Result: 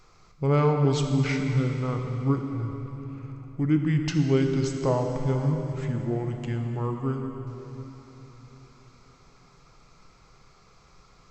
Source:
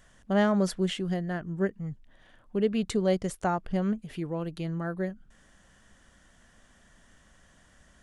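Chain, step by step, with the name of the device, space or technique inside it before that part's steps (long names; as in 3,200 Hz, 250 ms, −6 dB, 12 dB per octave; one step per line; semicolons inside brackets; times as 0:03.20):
slowed and reverbed (speed change −29%; convolution reverb RT60 3.9 s, pre-delay 3 ms, DRR 3.5 dB)
level +2 dB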